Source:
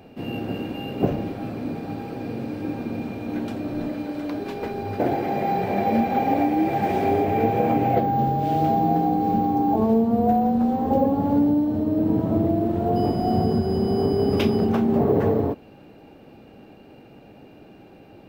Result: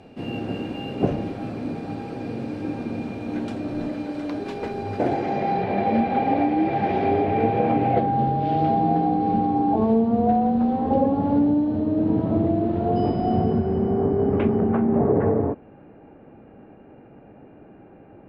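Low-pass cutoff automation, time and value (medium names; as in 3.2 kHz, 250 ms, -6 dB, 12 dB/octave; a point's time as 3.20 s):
low-pass 24 dB/octave
5.02 s 10 kHz
5.66 s 4.3 kHz
13.09 s 4.3 kHz
14.04 s 2 kHz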